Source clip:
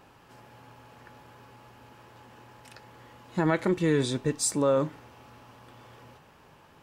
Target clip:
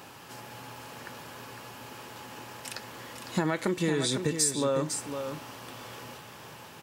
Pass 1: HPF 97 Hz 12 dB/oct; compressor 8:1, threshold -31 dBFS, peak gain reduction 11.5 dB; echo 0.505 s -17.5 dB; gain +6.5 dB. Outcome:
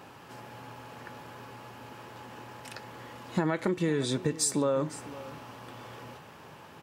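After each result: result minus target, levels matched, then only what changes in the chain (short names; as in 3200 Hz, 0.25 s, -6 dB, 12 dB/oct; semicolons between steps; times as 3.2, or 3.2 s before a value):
echo-to-direct -9.5 dB; 4000 Hz band -4.5 dB
change: echo 0.505 s -8 dB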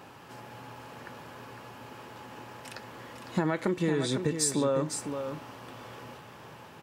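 4000 Hz band -4.5 dB
add after HPF: high shelf 3200 Hz +10.5 dB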